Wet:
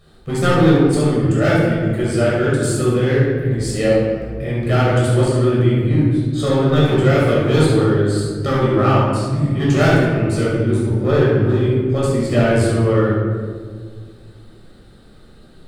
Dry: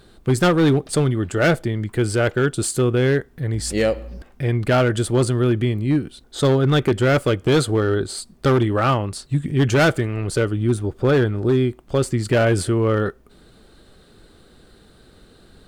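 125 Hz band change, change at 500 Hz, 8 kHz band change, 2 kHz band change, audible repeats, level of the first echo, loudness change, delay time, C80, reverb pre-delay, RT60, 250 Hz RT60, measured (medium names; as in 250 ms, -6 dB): +4.5 dB, +3.0 dB, -1.5 dB, +1.0 dB, no echo, no echo, +3.5 dB, no echo, 1.5 dB, 13 ms, 1.8 s, 2.6 s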